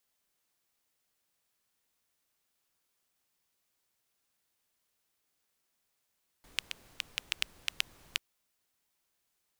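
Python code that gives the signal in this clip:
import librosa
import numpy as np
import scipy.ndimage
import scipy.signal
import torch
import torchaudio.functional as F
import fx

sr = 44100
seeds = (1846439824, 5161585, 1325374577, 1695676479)

y = fx.rain(sr, seeds[0], length_s=1.74, drops_per_s=5.0, hz=2800.0, bed_db=-19.0)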